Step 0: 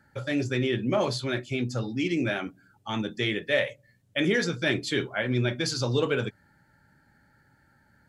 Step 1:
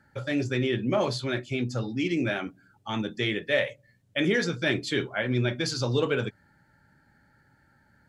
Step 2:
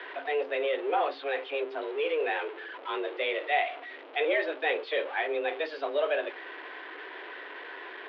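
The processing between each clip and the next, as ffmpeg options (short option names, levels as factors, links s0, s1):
-af "highshelf=f=9200:g=-5.5"
-af "aeval=exprs='val(0)+0.5*0.0266*sgn(val(0))':c=same,highpass=f=220:t=q:w=0.5412,highpass=f=220:t=q:w=1.307,lowpass=f=3200:t=q:w=0.5176,lowpass=f=3200:t=q:w=0.7071,lowpass=f=3200:t=q:w=1.932,afreqshift=150,volume=0.708"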